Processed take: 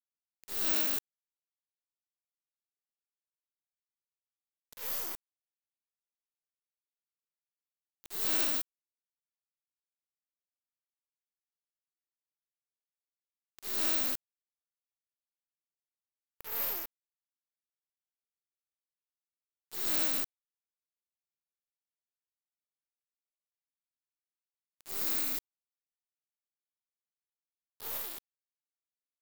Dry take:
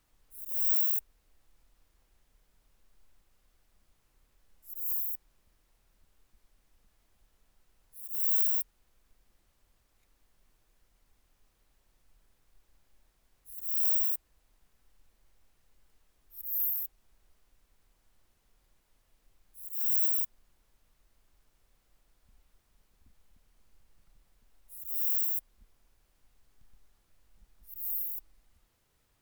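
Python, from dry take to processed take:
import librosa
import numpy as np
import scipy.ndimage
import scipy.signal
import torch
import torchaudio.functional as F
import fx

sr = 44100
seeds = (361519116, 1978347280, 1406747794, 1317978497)

y = fx.diode_clip(x, sr, knee_db=-29.0)
y = fx.noise_reduce_blind(y, sr, reduce_db=11)
y = np.where(np.abs(y) >= 10.0 ** (-31.5 / 20.0), y, 0.0)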